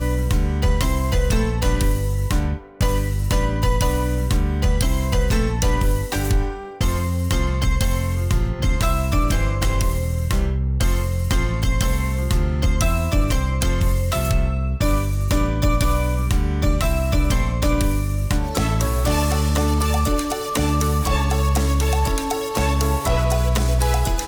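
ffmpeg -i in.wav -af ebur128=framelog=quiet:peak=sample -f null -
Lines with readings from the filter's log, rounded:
Integrated loudness:
  I:         -21.1 LUFS
  Threshold: -31.1 LUFS
Loudness range:
  LRA:         1.5 LU
  Threshold: -41.1 LUFS
  LRA low:   -21.8 LUFS
  LRA high:  -20.3 LUFS
Sample peak:
  Peak:       -8.3 dBFS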